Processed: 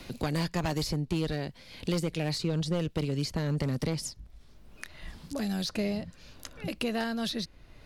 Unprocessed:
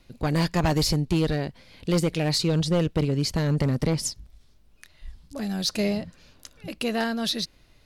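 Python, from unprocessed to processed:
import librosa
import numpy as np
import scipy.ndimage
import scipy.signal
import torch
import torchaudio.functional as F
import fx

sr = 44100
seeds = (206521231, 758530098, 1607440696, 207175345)

y = fx.band_squash(x, sr, depth_pct=70)
y = y * 10.0 ** (-6.5 / 20.0)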